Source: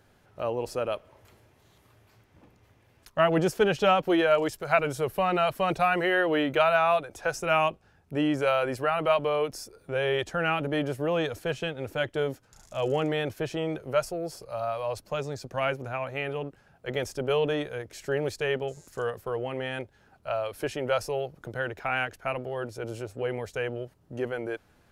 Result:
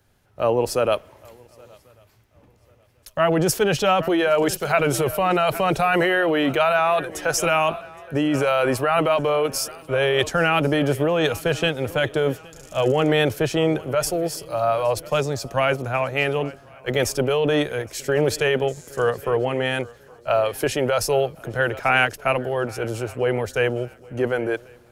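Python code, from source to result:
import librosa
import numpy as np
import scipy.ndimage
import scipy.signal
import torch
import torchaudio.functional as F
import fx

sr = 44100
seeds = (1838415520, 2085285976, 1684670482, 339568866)

p1 = fx.echo_swing(x, sr, ms=1092, ratio=3, feedback_pct=34, wet_db=-21.0)
p2 = fx.over_compress(p1, sr, threshold_db=-28.0, ratio=-0.5)
p3 = p1 + F.gain(torch.from_numpy(p2), 2.0).numpy()
p4 = fx.high_shelf(p3, sr, hz=7100.0, db=6.5)
p5 = fx.band_widen(p4, sr, depth_pct=40)
y = F.gain(torch.from_numpy(p5), 1.5).numpy()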